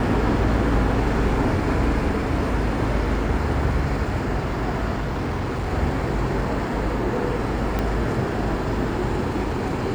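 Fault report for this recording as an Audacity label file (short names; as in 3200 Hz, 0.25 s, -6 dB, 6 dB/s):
4.990000	5.700000	clipped -21.5 dBFS
7.790000	7.790000	pop -11 dBFS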